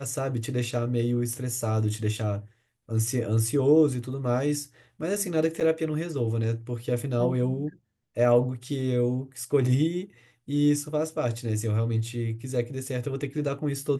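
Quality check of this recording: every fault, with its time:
5.6–5.61 gap 7.7 ms

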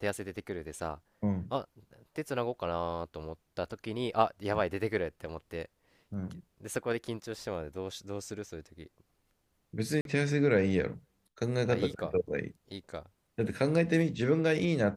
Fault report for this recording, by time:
10.01–10.05 gap 42 ms

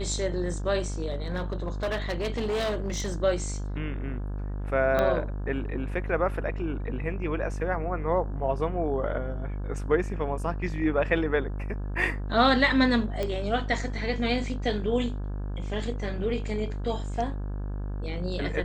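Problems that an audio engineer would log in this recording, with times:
buzz 50 Hz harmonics 34 -32 dBFS
1.1–3.14 clipped -24.5 dBFS
4.99 pop -13 dBFS
13.23 pop -17 dBFS

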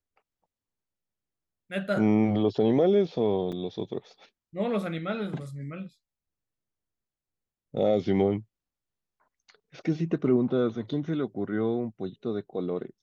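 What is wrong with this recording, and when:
3.52–3.53 gap 5.6 ms

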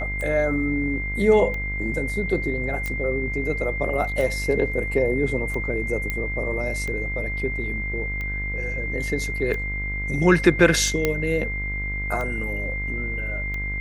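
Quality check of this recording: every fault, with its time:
buzz 50 Hz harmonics 37 -30 dBFS
tick 45 rpm -19 dBFS
tone 2100 Hz -28 dBFS
2.86 pop -14 dBFS
6.1 pop -12 dBFS
11.05 pop -7 dBFS

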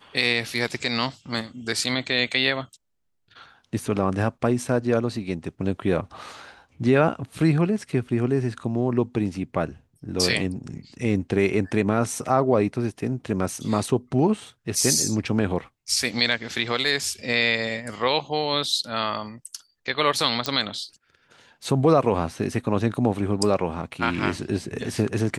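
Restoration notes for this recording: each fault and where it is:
20.46 pop -11 dBFS

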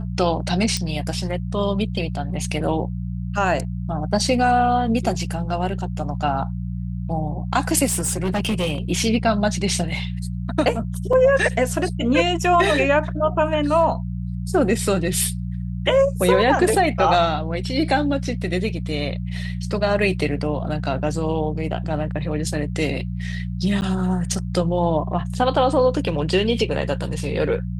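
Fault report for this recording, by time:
hum 60 Hz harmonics 3 -27 dBFS
0.77 pop -11 dBFS
7.86–8.79 clipped -17.5 dBFS
11.13 gap 3.6 ms
23.81–23.82 gap 9.8 ms

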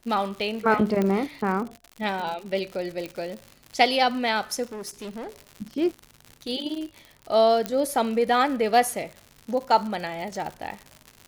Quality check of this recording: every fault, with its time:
crackle 110/s -32 dBFS
1.02 pop -13 dBFS
3.06 pop -20 dBFS
4.66–5.29 clipped -32.5 dBFS
7.66 pop -11 dBFS

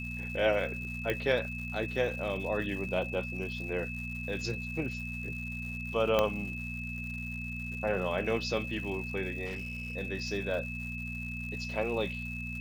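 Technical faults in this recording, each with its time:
crackle 250/s -42 dBFS
hum 60 Hz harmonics 4 -40 dBFS
tone 2600 Hz -39 dBFS
1.1 pop -18 dBFS
6.19 pop -13 dBFS
9.45–9.95 clipped -33.5 dBFS

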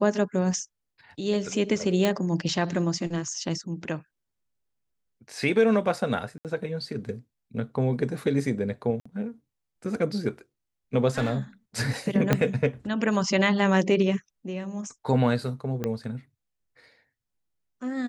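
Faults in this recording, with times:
2.05 pop -10 dBFS
6.38–6.45 gap 68 ms
9–9.05 gap 55 ms
11.1–11.37 clipped -20.5 dBFS
12.33 pop -7 dBFS
15.84 pop -15 dBFS

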